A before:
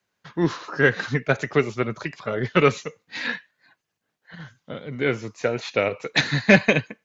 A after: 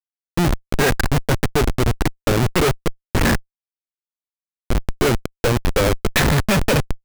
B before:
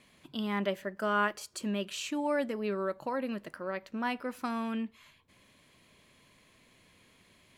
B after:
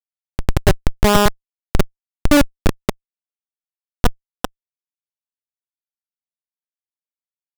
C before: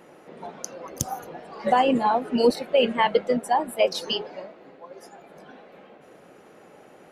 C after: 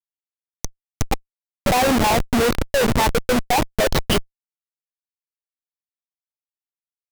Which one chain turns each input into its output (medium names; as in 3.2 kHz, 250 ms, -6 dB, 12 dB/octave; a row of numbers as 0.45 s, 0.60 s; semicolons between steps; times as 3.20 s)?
Schmitt trigger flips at -24.5 dBFS; normalise loudness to -20 LUFS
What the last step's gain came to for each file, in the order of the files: +9.0 dB, +26.5 dB, +10.0 dB